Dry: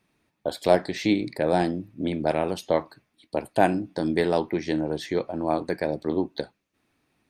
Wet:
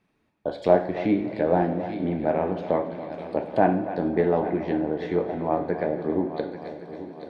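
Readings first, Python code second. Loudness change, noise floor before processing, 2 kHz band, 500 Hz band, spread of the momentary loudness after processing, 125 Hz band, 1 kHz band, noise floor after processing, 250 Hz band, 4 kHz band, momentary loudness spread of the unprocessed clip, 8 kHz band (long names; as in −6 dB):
+0.5 dB, −75 dBFS, −3.0 dB, +1.5 dB, 12 LU, +1.5 dB, +1.0 dB, −70 dBFS, +1.0 dB, below −10 dB, 9 LU, below −20 dB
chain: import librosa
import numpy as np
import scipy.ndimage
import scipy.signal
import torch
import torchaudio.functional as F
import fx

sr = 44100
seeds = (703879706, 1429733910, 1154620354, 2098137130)

p1 = fx.high_shelf(x, sr, hz=4000.0, db=-12.0)
p2 = p1 + fx.echo_heads(p1, sr, ms=278, heads='first and third', feedback_pct=55, wet_db=-14, dry=0)
p3 = fx.env_lowpass_down(p2, sr, base_hz=1800.0, full_db=-22.5)
y = fx.rev_double_slope(p3, sr, seeds[0], early_s=0.57, late_s=4.7, knee_db=-17, drr_db=5.5)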